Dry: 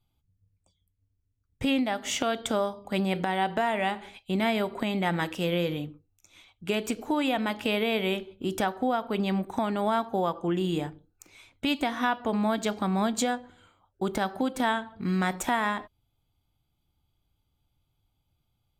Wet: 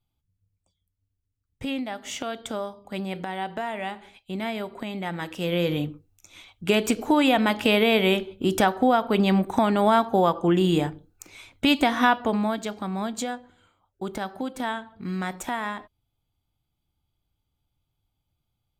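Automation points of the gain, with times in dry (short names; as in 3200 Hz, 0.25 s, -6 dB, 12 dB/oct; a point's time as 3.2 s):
5.19 s -4 dB
5.82 s +7 dB
12.12 s +7 dB
12.68 s -3 dB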